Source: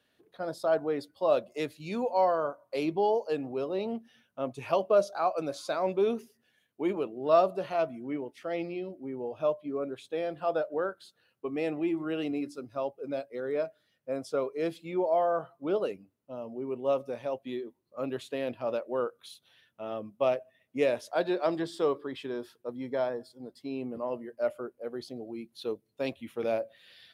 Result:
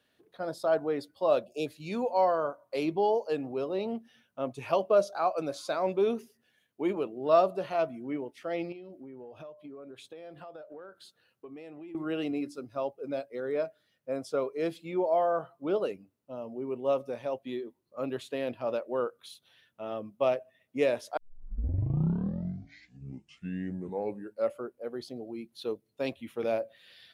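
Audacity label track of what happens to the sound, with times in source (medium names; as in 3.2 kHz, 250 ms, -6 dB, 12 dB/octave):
1.460000	1.670000	spectral selection erased 880–2300 Hz
8.720000	11.950000	compression 12:1, threshold -42 dBFS
21.170000	21.170000	tape start 3.48 s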